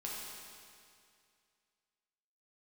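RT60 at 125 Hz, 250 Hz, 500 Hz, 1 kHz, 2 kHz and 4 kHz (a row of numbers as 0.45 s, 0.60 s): 2.3 s, 2.3 s, 2.3 s, 2.3 s, 2.3 s, 2.2 s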